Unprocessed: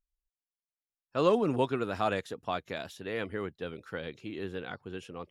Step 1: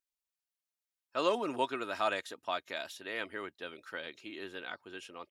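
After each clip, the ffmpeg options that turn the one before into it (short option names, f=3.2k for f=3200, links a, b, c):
-af "highpass=f=980:p=1,aecho=1:1:3.2:0.36,volume=1.5dB"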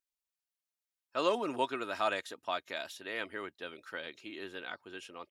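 -af anull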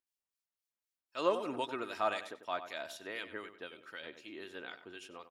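-filter_complex "[0:a]acrossover=split=2000[a][b];[a]aeval=exprs='val(0)*(1-0.7/2+0.7/2*cos(2*PI*3.9*n/s))':c=same[c];[b]aeval=exprs='val(0)*(1-0.7/2-0.7/2*cos(2*PI*3.9*n/s))':c=same[d];[c][d]amix=inputs=2:normalize=0,asplit=2[e][f];[f]adelay=95,lowpass=f=2.7k:p=1,volume=-10.5dB,asplit=2[g][h];[h]adelay=95,lowpass=f=2.7k:p=1,volume=0.33,asplit=2[i][j];[j]adelay=95,lowpass=f=2.7k:p=1,volume=0.33,asplit=2[k][l];[l]adelay=95,lowpass=f=2.7k:p=1,volume=0.33[m];[e][g][i][k][m]amix=inputs=5:normalize=0"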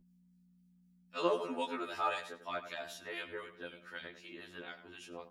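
-af "aeval=exprs='val(0)+0.00112*(sin(2*PI*60*n/s)+sin(2*PI*2*60*n/s)/2+sin(2*PI*3*60*n/s)/3+sin(2*PI*4*60*n/s)/4+sin(2*PI*5*60*n/s)/5)':c=same,afftfilt=real='re*2*eq(mod(b,4),0)':imag='im*2*eq(mod(b,4),0)':win_size=2048:overlap=0.75,volume=2dB"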